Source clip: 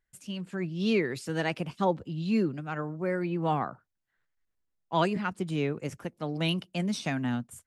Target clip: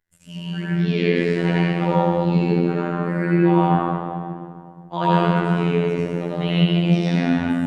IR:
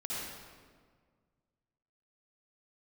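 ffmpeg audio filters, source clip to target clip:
-filter_complex "[1:a]atrim=start_sample=2205,asetrate=31752,aresample=44100[s0];[0:a][s0]afir=irnorm=-1:irlink=0,afftfilt=real='hypot(re,im)*cos(PI*b)':imag='0':win_size=2048:overlap=0.75,acrossover=split=4500[s1][s2];[s2]acompressor=threshold=0.00112:ratio=4:attack=1:release=60[s3];[s1][s3]amix=inputs=2:normalize=0,volume=2.24"

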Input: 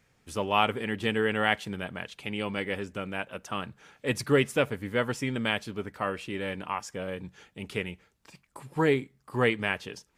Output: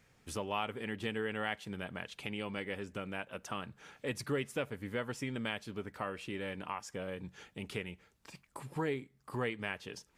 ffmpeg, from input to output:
-af "acompressor=threshold=0.00891:ratio=2"

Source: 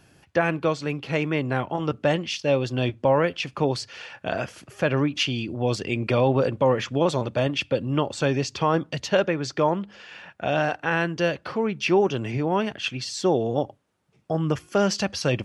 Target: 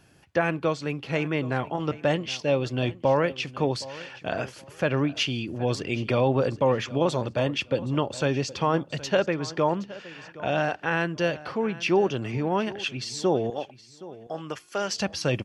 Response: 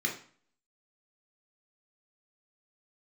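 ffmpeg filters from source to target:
-filter_complex "[0:a]asettb=1/sr,asplit=3[s0][s1][s2];[s0]atrim=end=13.504[s3];[s1]atrim=start=13.5:end=15,asetpts=PTS-STARTPTS,afade=t=in:d=0.004:c=qsin,afade=t=out:st=1.496:d=0.004:c=qsin,highpass=f=850:p=1[s4];[s2]atrim=start=14.996[s5];[s3][s4]acrossfade=d=0.004:c1=hsin:c2=qsin[s6];[s6][s5]acrossfade=d=0.004:c1=qsin:c2=hsin,asplit=2[s7][s8];[s8]aecho=0:1:769|1538:0.126|0.0302[s9];[s7][s9]amix=inputs=2:normalize=0,volume=0.794"

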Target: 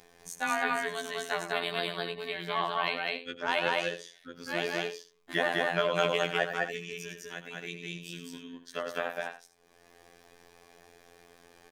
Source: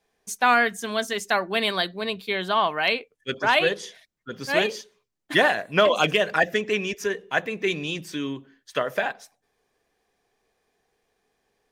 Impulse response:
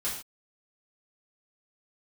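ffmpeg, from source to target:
-filter_complex "[0:a]asettb=1/sr,asplit=3[s0][s1][s2];[s0]atrim=end=6.454[s3];[s1]atrim=start=6.45:end=8.34,asetpts=PTS-STARTPTS,afade=t=in:d=0.004:c=qsin,afade=t=out:st=1.886:d=0.004:c=qsin,equalizer=f=770:w=0.45:g=-12[s4];[s2]atrim=start=8.336[s5];[s3][s4]acrossfade=d=0.004:c1=hsin:c2=qsin[s6];[s6][s5]acrossfade=d=0.004:c1=qsin:c2=hsin,acompressor=mode=upward:threshold=0.0282:ratio=2.5,aecho=1:1:102|204.1|277:0.316|0.891|0.251,afftfilt=real='hypot(re,im)*cos(PI*b)':imag='0':win_size=2048:overlap=0.75,volume=0.447"

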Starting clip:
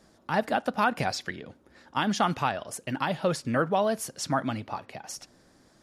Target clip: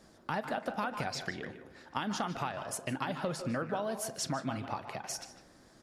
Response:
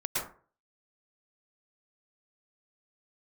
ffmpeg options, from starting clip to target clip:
-filter_complex "[0:a]acompressor=threshold=0.0251:ratio=6,asplit=2[s0][s1];[s1]adelay=150,highpass=300,lowpass=3400,asoftclip=type=hard:threshold=0.0355,volume=0.316[s2];[s0][s2]amix=inputs=2:normalize=0,asplit=2[s3][s4];[1:a]atrim=start_sample=2205,highshelf=f=8300:g=-10.5,adelay=39[s5];[s4][s5]afir=irnorm=-1:irlink=0,volume=0.15[s6];[s3][s6]amix=inputs=2:normalize=0"

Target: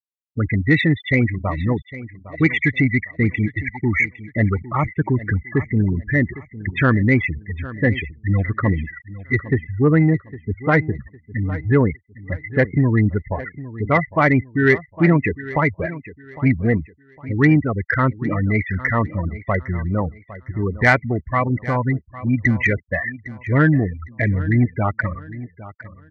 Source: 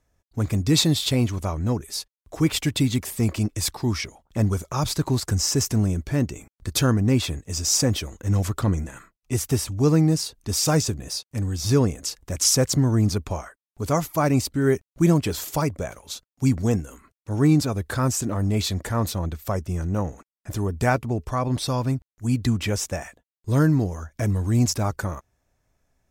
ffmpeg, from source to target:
-filter_complex "[0:a]lowpass=f=2000:t=q:w=9.8,afftfilt=real='re*gte(hypot(re,im),0.112)':imag='im*gte(hypot(re,im),0.112)':win_size=1024:overlap=0.75,acontrast=49,highpass=f=59:p=1,asplit=2[s0][s1];[s1]aecho=0:1:807|1614|2421:0.15|0.0464|0.0144[s2];[s0][s2]amix=inputs=2:normalize=0,volume=0.841"

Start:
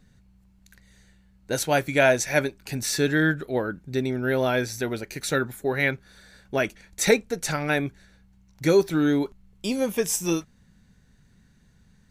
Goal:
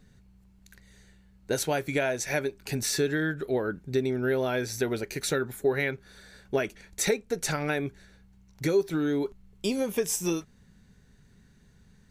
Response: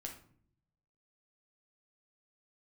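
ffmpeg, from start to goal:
-af "acompressor=threshold=0.0562:ratio=6,equalizer=f=410:t=o:w=0.26:g=6.5"

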